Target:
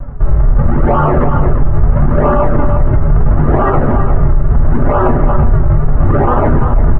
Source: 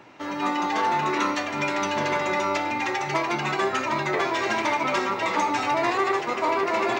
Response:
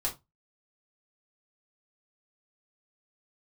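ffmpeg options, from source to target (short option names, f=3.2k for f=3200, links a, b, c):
-filter_complex "[0:a]aresample=16000,acrusher=samples=37:mix=1:aa=0.000001:lfo=1:lforange=59.2:lforate=0.75,aresample=44100,lowpass=f=1.4k:w=0.5412,lowpass=f=1.4k:w=1.3066[a];[1:a]atrim=start_sample=2205,asetrate=74970,aresample=44100[b];[a][b]afir=irnorm=-1:irlink=0,areverse,acompressor=threshold=-21dB:ratio=6,areverse,aecho=1:1:344:0.376,alimiter=level_in=22.5dB:limit=-1dB:release=50:level=0:latency=1,volume=-1dB"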